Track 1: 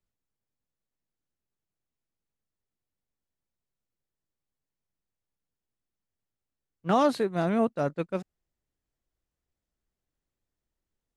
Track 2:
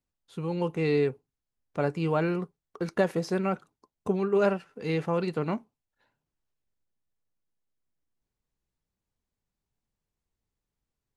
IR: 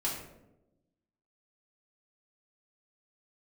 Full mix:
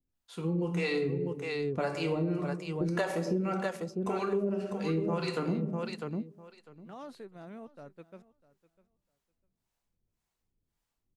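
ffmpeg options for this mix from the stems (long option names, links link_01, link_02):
-filter_complex "[0:a]alimiter=limit=-18.5dB:level=0:latency=1:release=38,volume=-18.5dB,asplit=2[link_01][link_02];[link_02]volume=-19.5dB[link_03];[1:a]adynamicequalizer=threshold=0.00178:dfrequency=6900:dqfactor=0.81:tfrequency=6900:tqfactor=0.81:attack=5:release=100:ratio=0.375:range=3:mode=boostabove:tftype=bell,acrossover=split=460[link_04][link_05];[link_04]aeval=exprs='val(0)*(1-1/2+1/2*cos(2*PI*1.8*n/s))':channel_layout=same[link_06];[link_05]aeval=exprs='val(0)*(1-1/2-1/2*cos(2*PI*1.8*n/s))':channel_layout=same[link_07];[link_06][link_07]amix=inputs=2:normalize=0,volume=0.5dB,asplit=3[link_08][link_09][link_10];[link_09]volume=-3.5dB[link_11];[link_10]volume=-3dB[link_12];[2:a]atrim=start_sample=2205[link_13];[link_11][link_13]afir=irnorm=-1:irlink=0[link_14];[link_03][link_12]amix=inputs=2:normalize=0,aecho=0:1:650|1300|1950:1|0.15|0.0225[link_15];[link_01][link_08][link_14][link_15]amix=inputs=4:normalize=0,acompressor=threshold=-27dB:ratio=6"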